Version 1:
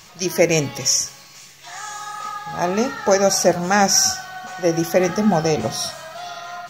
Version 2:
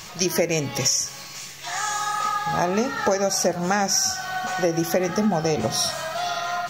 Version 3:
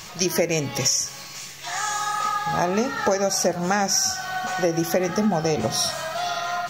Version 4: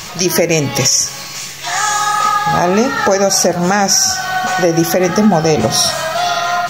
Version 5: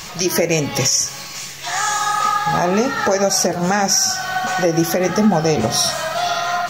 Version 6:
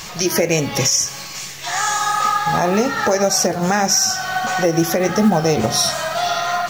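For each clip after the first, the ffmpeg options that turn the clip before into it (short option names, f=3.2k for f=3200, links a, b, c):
-af "acompressor=threshold=-25dB:ratio=6,volume=6dB"
-af anull
-af "alimiter=level_in=12dB:limit=-1dB:release=50:level=0:latency=1,volume=-1dB"
-af "flanger=delay=3.5:depth=6.7:regen=-69:speed=1.5:shape=triangular"
-af "acrusher=bits=7:mode=log:mix=0:aa=0.000001"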